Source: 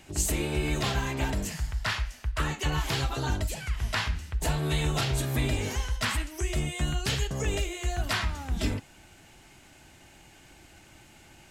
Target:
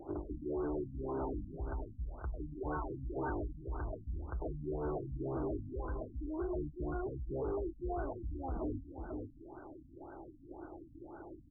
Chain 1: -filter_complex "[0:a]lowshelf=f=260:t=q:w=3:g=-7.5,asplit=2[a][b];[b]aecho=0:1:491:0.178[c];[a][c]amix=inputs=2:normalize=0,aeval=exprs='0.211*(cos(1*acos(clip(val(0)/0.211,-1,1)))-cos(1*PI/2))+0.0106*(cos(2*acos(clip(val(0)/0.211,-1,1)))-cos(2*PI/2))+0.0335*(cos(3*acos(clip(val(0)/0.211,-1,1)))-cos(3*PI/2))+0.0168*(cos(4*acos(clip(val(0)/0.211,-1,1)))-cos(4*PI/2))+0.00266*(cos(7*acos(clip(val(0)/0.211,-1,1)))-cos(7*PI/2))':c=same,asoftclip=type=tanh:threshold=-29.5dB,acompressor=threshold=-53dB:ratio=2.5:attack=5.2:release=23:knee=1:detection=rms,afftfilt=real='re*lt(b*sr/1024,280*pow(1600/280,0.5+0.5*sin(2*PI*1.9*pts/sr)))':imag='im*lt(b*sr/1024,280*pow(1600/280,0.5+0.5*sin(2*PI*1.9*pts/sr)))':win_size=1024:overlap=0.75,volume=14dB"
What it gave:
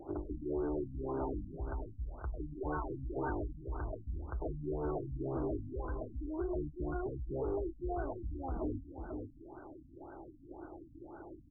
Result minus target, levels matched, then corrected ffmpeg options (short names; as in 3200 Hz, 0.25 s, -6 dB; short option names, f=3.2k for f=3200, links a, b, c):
soft clip: distortion -5 dB
-filter_complex "[0:a]lowshelf=f=260:t=q:w=3:g=-7.5,asplit=2[a][b];[b]aecho=0:1:491:0.178[c];[a][c]amix=inputs=2:normalize=0,aeval=exprs='0.211*(cos(1*acos(clip(val(0)/0.211,-1,1)))-cos(1*PI/2))+0.0106*(cos(2*acos(clip(val(0)/0.211,-1,1)))-cos(2*PI/2))+0.0335*(cos(3*acos(clip(val(0)/0.211,-1,1)))-cos(3*PI/2))+0.0168*(cos(4*acos(clip(val(0)/0.211,-1,1)))-cos(4*PI/2))+0.00266*(cos(7*acos(clip(val(0)/0.211,-1,1)))-cos(7*PI/2))':c=same,asoftclip=type=tanh:threshold=-37.5dB,acompressor=threshold=-53dB:ratio=2.5:attack=5.2:release=23:knee=1:detection=rms,afftfilt=real='re*lt(b*sr/1024,280*pow(1600/280,0.5+0.5*sin(2*PI*1.9*pts/sr)))':imag='im*lt(b*sr/1024,280*pow(1600/280,0.5+0.5*sin(2*PI*1.9*pts/sr)))':win_size=1024:overlap=0.75,volume=14dB"